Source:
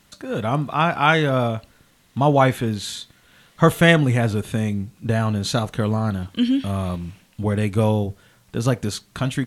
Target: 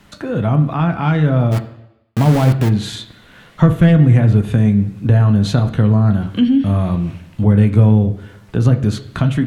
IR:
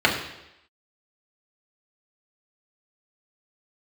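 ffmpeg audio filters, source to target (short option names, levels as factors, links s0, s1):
-filter_complex "[0:a]acontrast=30,highshelf=f=3800:g=-12,acrossover=split=230[s0][s1];[s1]acompressor=threshold=0.0316:ratio=3[s2];[s0][s2]amix=inputs=2:normalize=0,asplit=3[s3][s4][s5];[s3]afade=t=out:st=1.51:d=0.02[s6];[s4]aeval=exprs='val(0)*gte(abs(val(0)),0.0708)':c=same,afade=t=in:st=1.51:d=0.02,afade=t=out:st=2.68:d=0.02[s7];[s5]afade=t=in:st=2.68:d=0.02[s8];[s6][s7][s8]amix=inputs=3:normalize=0,asplit=2[s9][s10];[1:a]atrim=start_sample=2205,adelay=12[s11];[s10][s11]afir=irnorm=-1:irlink=0,volume=0.0501[s12];[s9][s12]amix=inputs=2:normalize=0,volume=1.78"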